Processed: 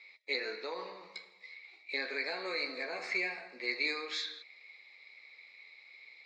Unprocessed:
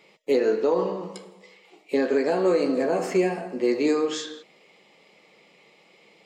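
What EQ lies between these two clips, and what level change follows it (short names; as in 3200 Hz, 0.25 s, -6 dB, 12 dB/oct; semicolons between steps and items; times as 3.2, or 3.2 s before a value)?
double band-pass 3000 Hz, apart 0.82 oct; air absorption 74 m; +8.0 dB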